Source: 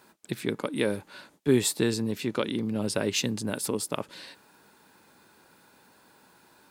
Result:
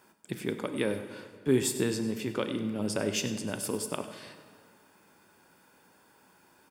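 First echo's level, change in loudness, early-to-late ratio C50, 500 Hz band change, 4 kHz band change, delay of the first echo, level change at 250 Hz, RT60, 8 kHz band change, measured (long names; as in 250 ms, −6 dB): −15.0 dB, −3.0 dB, 9.0 dB, −2.5 dB, −4.5 dB, 98 ms, −2.5 dB, 1.9 s, −3.0 dB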